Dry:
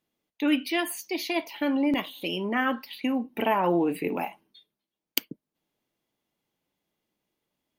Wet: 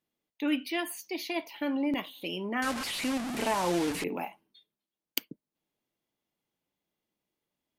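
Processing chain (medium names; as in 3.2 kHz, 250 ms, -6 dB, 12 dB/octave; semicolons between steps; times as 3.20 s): 2.62–4.04 s: one-bit delta coder 64 kbps, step -23.5 dBFS; trim -5 dB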